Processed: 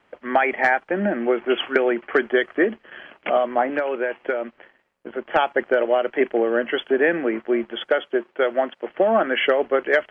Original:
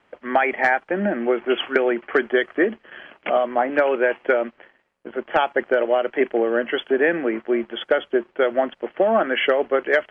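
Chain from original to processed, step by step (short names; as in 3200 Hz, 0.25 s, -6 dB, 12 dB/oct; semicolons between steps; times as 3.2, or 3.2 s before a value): 3.72–5.26 compressor 2:1, threshold -24 dBFS, peak gain reduction 6.5 dB; 7.89–8.88 HPF 280 Hz 6 dB/oct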